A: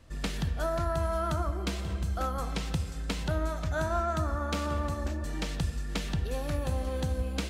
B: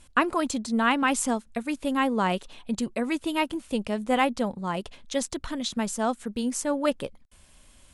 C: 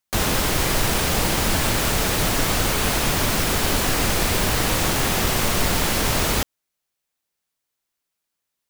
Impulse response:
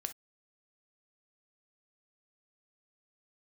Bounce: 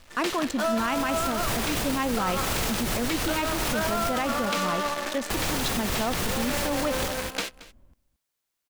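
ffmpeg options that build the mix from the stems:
-filter_complex "[0:a]highpass=280,acrusher=bits=7:dc=4:mix=0:aa=0.000001,asplit=2[link_01][link_02];[link_02]highpass=frequency=720:poles=1,volume=14dB,asoftclip=type=tanh:threshold=-17.5dB[link_03];[link_01][link_03]amix=inputs=2:normalize=0,lowpass=frequency=6300:poles=1,volume=-6dB,volume=2dB,asplit=2[link_04][link_05];[link_05]volume=-18.5dB[link_06];[1:a]adynamicsmooth=sensitivity=7.5:basefreq=690,volume=1dB,asplit=3[link_07][link_08][link_09];[link_08]volume=-17dB[link_10];[2:a]adelay=650,volume=-1dB,asplit=3[link_11][link_12][link_13];[link_11]atrim=end=4.27,asetpts=PTS-STARTPTS,afade=type=out:start_time=4.266:duration=0.004:curve=hsin[link_14];[link_12]atrim=start=4.27:end=5.3,asetpts=PTS-STARTPTS,volume=0[link_15];[link_13]atrim=start=5.3,asetpts=PTS-STARTPTS,afade=type=in:duration=0.004:curve=hsin[link_16];[link_14][link_15][link_16]concat=n=3:v=0:a=1,asplit=2[link_17][link_18];[link_18]volume=-13.5dB[link_19];[link_09]apad=whole_len=412066[link_20];[link_17][link_20]sidechaincompress=threshold=-31dB:ratio=8:attack=10:release=210[link_21];[link_06][link_10][link_19]amix=inputs=3:normalize=0,aecho=0:1:225:1[link_22];[link_04][link_07][link_21][link_22]amix=inputs=4:normalize=0,alimiter=limit=-17.5dB:level=0:latency=1:release=27"

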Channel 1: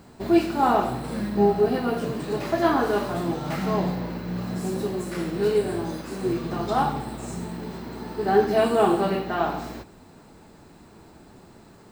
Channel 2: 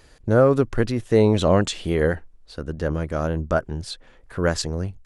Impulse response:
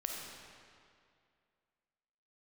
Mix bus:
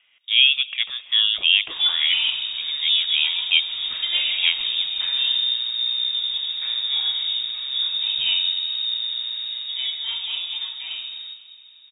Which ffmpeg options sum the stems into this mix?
-filter_complex "[0:a]asubboost=boost=6:cutoff=150,adelay=1500,volume=-12.5dB,afade=type=out:start_time=9.49:duration=0.4:silence=0.446684,asplit=2[link_01][link_02];[link_02]volume=-6dB[link_03];[1:a]bandpass=frequency=1000:width_type=q:width=2.2:csg=0,volume=1.5dB,asplit=2[link_04][link_05];[link_05]volume=-17.5dB[link_06];[2:a]atrim=start_sample=2205[link_07];[link_03][link_06]amix=inputs=2:normalize=0[link_08];[link_08][link_07]afir=irnorm=-1:irlink=0[link_09];[link_01][link_04][link_09]amix=inputs=3:normalize=0,lowpass=frequency=3200:width_type=q:width=0.5098,lowpass=frequency=3200:width_type=q:width=0.6013,lowpass=frequency=3200:width_type=q:width=0.9,lowpass=frequency=3200:width_type=q:width=2.563,afreqshift=-3800,lowshelf=frequency=100:gain=8,dynaudnorm=framelen=120:gausssize=3:maxgain=8dB"

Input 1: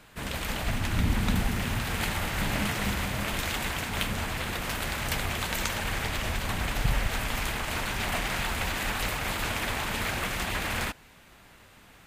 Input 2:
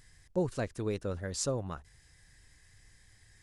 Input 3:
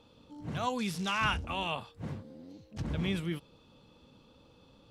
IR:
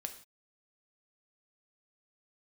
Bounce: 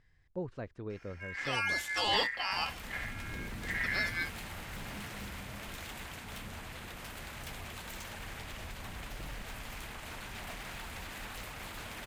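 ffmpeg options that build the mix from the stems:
-filter_complex "[0:a]aeval=exprs='0.0668*(abs(mod(val(0)/0.0668+3,4)-2)-1)':channel_layout=same,adelay=2350,volume=-13dB[link_01];[1:a]lowpass=2700,volume=-7.5dB[link_02];[2:a]aecho=1:1:3.6:0.57,aeval=exprs='val(0)*sin(2*PI*1900*n/s)':channel_layout=same,adelay=900,volume=1.5dB,asplit=2[link_03][link_04];[link_04]volume=-19.5dB[link_05];[3:a]atrim=start_sample=2205[link_06];[link_05][link_06]afir=irnorm=-1:irlink=0[link_07];[link_01][link_02][link_03][link_07]amix=inputs=4:normalize=0"

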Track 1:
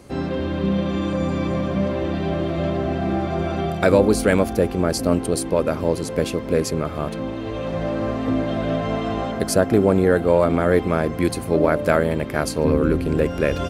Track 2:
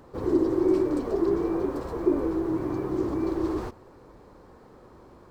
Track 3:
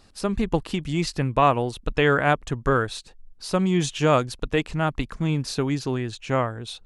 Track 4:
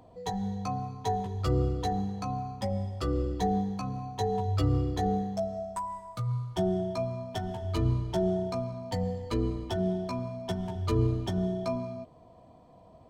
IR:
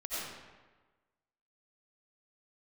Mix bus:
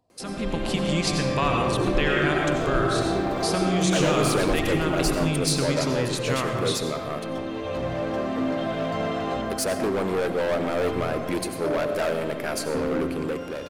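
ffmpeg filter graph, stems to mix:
-filter_complex "[0:a]highpass=frequency=330:poles=1,volume=20.5dB,asoftclip=hard,volume=-20.5dB,adelay=100,volume=-10dB,asplit=2[link_01][link_02];[link_02]volume=-10.5dB[link_03];[1:a]adelay=1550,volume=-3dB[link_04];[2:a]agate=range=-28dB:threshold=-41dB:ratio=16:detection=peak,equalizer=frequency=560:width=0.45:gain=-13,volume=-1dB,asplit=2[link_05][link_06];[link_06]volume=-8dB[link_07];[3:a]volume=-17dB[link_08];[link_04][link_05]amix=inputs=2:normalize=0,highpass=150,acompressor=threshold=-32dB:ratio=6,volume=0dB[link_09];[4:a]atrim=start_sample=2205[link_10];[link_03][link_07]amix=inputs=2:normalize=0[link_11];[link_11][link_10]afir=irnorm=-1:irlink=0[link_12];[link_01][link_08][link_09][link_12]amix=inputs=4:normalize=0,dynaudnorm=framelen=100:gausssize=11:maxgain=7.5dB"

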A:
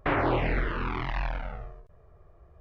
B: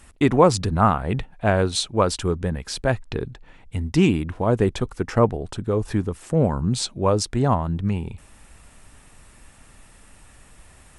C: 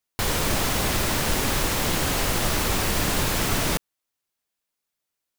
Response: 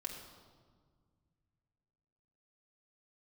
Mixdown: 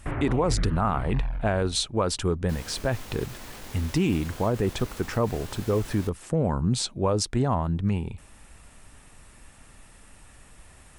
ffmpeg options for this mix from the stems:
-filter_complex "[0:a]bass=frequency=250:gain=13,treble=frequency=4000:gain=-5,volume=-10dB[link_01];[1:a]volume=-1.5dB[link_02];[2:a]alimiter=limit=-20dB:level=0:latency=1:release=21,flanger=delay=19.5:depth=3.4:speed=1.5,adelay=2300,volume=-11dB,asplit=2[link_03][link_04];[link_04]volume=-16.5dB[link_05];[3:a]atrim=start_sample=2205[link_06];[link_05][link_06]afir=irnorm=-1:irlink=0[link_07];[link_01][link_02][link_03][link_07]amix=inputs=4:normalize=0,alimiter=limit=-14.5dB:level=0:latency=1:release=36"

